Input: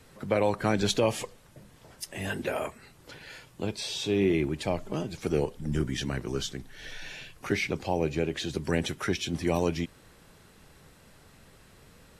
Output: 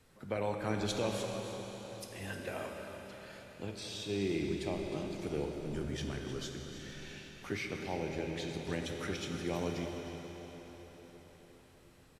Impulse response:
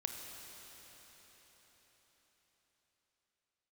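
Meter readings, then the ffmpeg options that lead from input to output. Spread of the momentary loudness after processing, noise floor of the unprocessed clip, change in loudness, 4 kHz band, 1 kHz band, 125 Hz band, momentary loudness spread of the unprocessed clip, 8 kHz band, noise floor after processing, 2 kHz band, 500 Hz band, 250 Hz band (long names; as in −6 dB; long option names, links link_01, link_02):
14 LU, −57 dBFS, −9.0 dB, −8.0 dB, −8.0 dB, −8.0 dB, 16 LU, −8.0 dB, −60 dBFS, −8.0 dB, −8.0 dB, −8.0 dB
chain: -filter_complex "[0:a]aecho=1:1:309:0.237[link_01];[1:a]atrim=start_sample=2205[link_02];[link_01][link_02]afir=irnorm=-1:irlink=0,volume=-8.5dB"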